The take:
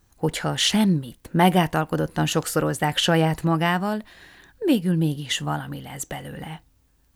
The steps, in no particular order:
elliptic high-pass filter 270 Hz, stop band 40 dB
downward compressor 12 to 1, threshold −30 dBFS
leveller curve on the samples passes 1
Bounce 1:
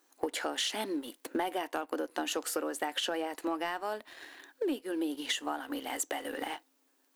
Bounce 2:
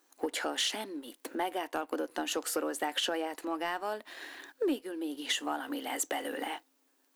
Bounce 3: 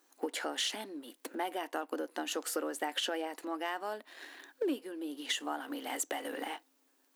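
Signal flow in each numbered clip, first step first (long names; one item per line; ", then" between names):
elliptic high-pass filter, then leveller curve on the samples, then downward compressor
downward compressor, then elliptic high-pass filter, then leveller curve on the samples
leveller curve on the samples, then downward compressor, then elliptic high-pass filter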